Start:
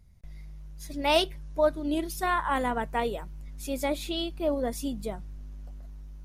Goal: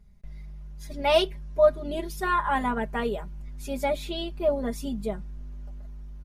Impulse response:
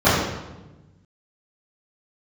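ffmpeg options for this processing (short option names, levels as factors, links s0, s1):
-af "highshelf=f=3700:g=-7.5,aecho=1:1:4.9:0.89"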